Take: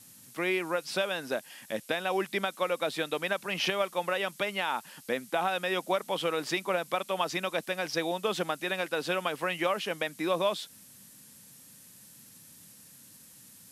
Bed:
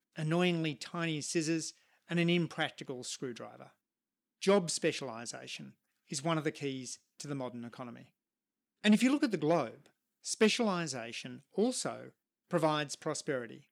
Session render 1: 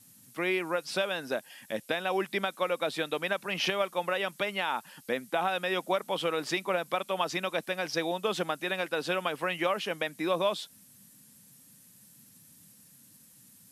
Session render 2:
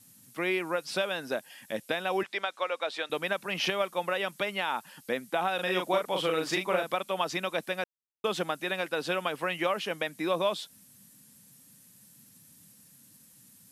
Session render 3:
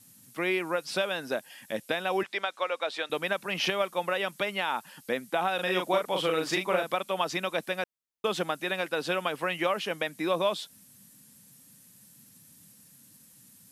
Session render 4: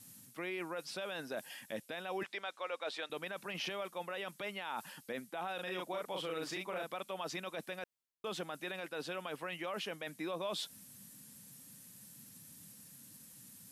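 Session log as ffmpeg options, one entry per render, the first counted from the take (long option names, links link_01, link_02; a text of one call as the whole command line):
ffmpeg -i in.wav -af "afftdn=noise_reduction=6:noise_floor=-54" out.wav
ffmpeg -i in.wav -filter_complex "[0:a]asettb=1/sr,asplit=3[link_01][link_02][link_03];[link_01]atrim=end=2.234[link_04];[link_02]atrim=start=2.23:end=3.1,asetpts=PTS-STARTPTS,afade=type=in:duration=0.004:curve=qsin,afade=type=out:start_time=0.866:duration=0.004:curve=qsin,highpass=530,lowpass=6400[link_05];[link_03]atrim=start=3.096[link_06];[link_04][link_05]acrossfade=duration=0.004:curve1=hsin:curve2=qsin[link_07];[link_07][link_06]acrossfade=duration=0.004:curve1=qsin:curve2=hsin,asettb=1/sr,asplit=3[link_08][link_09][link_10];[link_08]atrim=end=5.554[link_11];[link_09]atrim=start=5.55:end=6.94,asetpts=PTS-STARTPTS,afade=type=in:duration=0.004:curve=qsin,afade=type=out:start_time=1.386:duration=0.004:curve=qsin,asplit=2[link_12][link_13];[link_13]adelay=38,volume=-3.5dB[link_14];[link_12][link_14]amix=inputs=2:normalize=0,atrim=end_sample=61299[link_15];[link_10]atrim=start=6.936[link_16];[link_11][link_15]acrossfade=duration=0.004:curve1=hsin:curve2=qsin[link_17];[link_17][link_16]acrossfade=duration=0.004:curve1=qsin:curve2=hsin,asplit=3[link_18][link_19][link_20];[link_18]atrim=end=7.84,asetpts=PTS-STARTPTS,afade=type=out:start_time=7.836:duration=0.004:curve=hsin[link_21];[link_19]atrim=start=7.84:end=8.24,asetpts=PTS-STARTPTS,volume=0[link_22];[link_20]atrim=start=8.24,asetpts=PTS-STARTPTS,afade=type=in:duration=0.004:curve=hsin[link_23];[link_21][link_22][link_23]concat=n=3:v=0:a=1" out.wav
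ffmpeg -i in.wav -af "volume=1dB" out.wav
ffmpeg -i in.wav -af "areverse,acompressor=threshold=-36dB:ratio=4,areverse,alimiter=level_in=6dB:limit=-24dB:level=0:latency=1:release=18,volume=-6dB" out.wav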